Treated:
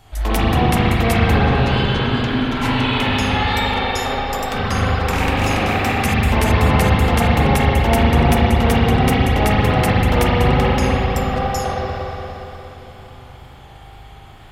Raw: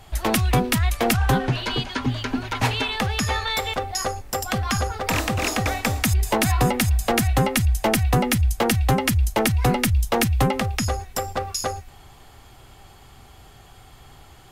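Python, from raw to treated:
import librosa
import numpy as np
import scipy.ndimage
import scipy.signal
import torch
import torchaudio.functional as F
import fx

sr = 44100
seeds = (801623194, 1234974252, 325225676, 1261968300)

y = fx.cheby_harmonics(x, sr, harmonics=(5,), levels_db=(-33,), full_scale_db=-7.5)
y = fx.wow_flutter(y, sr, seeds[0], rate_hz=2.1, depth_cents=80.0)
y = fx.rev_spring(y, sr, rt60_s=3.8, pass_ms=(39, 58), chirp_ms=25, drr_db=-9.5)
y = F.gain(torch.from_numpy(y), -4.5).numpy()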